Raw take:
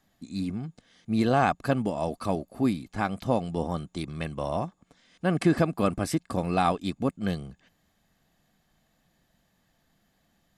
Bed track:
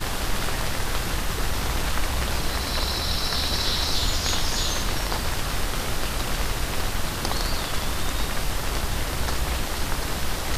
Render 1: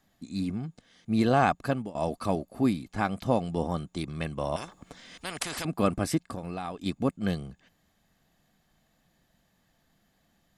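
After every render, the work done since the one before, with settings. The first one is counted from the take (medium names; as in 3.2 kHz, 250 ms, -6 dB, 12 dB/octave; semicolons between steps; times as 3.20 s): 1.45–1.95 s: fade out equal-power, to -18 dB; 4.56–5.65 s: spectrum-flattening compressor 4:1; 6.20–6.86 s: compression 4:1, threshold -33 dBFS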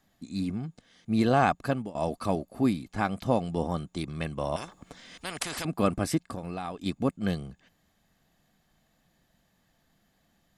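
no audible change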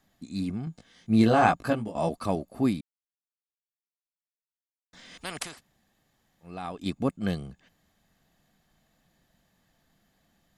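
0.65–2.09 s: doubling 18 ms -2 dB; 2.81–4.93 s: mute; 5.49–6.52 s: room tone, crossfade 0.24 s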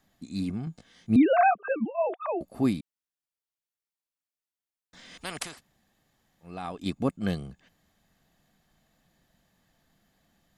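1.16–2.41 s: formants replaced by sine waves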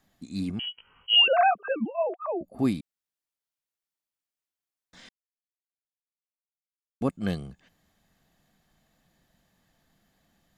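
0.59–1.28 s: frequency inversion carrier 3.1 kHz; 2.03–2.59 s: spectral contrast enhancement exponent 1.6; 5.09–7.01 s: mute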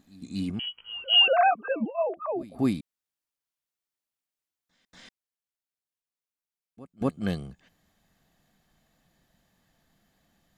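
pre-echo 238 ms -20 dB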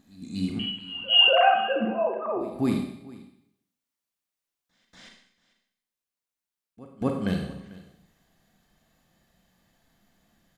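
delay 445 ms -20 dB; Schroeder reverb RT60 0.71 s, combs from 32 ms, DRR 2 dB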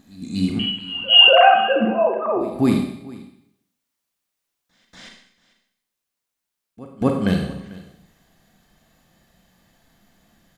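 trim +7.5 dB; peak limiter -1 dBFS, peak gain reduction 1 dB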